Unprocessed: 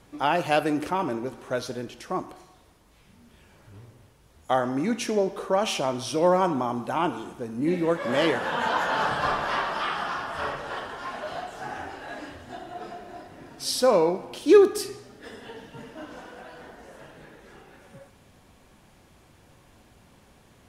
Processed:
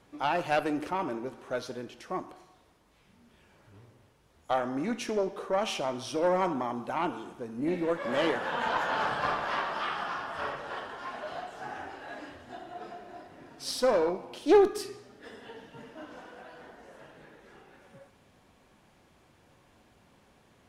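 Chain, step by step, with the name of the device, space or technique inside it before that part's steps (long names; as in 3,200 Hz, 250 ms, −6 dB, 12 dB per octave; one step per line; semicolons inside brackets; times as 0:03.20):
tube preamp driven hard (tube saturation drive 12 dB, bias 0.7; low-shelf EQ 130 Hz −7 dB; high-shelf EQ 6,200 Hz −7 dB)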